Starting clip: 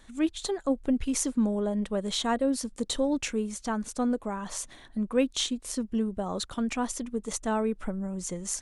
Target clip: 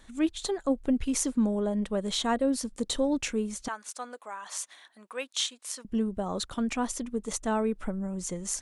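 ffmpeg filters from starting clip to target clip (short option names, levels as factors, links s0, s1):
-filter_complex "[0:a]asettb=1/sr,asplit=3[s0][s1][s2];[s0]atrim=end=3.684[s3];[s1]atrim=start=3.68:end=5.85,asetpts=PTS-STARTPTS,afade=t=in:d=0.004:c=qsin,afade=t=out:st=2.166:d=0.004:c=qsin,highpass=930[s4];[s2]atrim=start=5.846[s5];[s3][s4]acrossfade=d=0.004:c1=hsin:c2=qsin[s6];[s6][s5]acrossfade=d=0.004:c1=qsin:c2=hsin"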